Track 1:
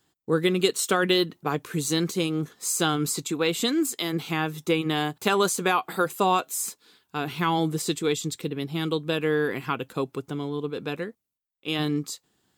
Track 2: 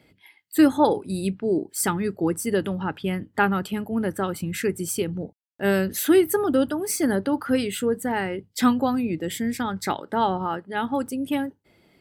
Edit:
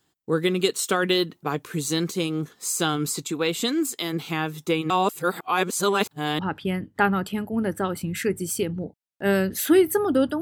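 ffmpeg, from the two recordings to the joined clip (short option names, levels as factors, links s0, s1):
-filter_complex "[0:a]apad=whole_dur=10.41,atrim=end=10.41,asplit=2[s0][s1];[s0]atrim=end=4.902[s2];[s1]atrim=start=4.898:end=6.392,asetpts=PTS-STARTPTS,areverse[s3];[1:a]atrim=start=2.778:end=6.8[s4];[s2][s3]acrossfade=d=0.004:c1=hsin:c2=hsin[s5];[s5][s4]acrossfade=d=0.004:c1=hsin:c2=hsin"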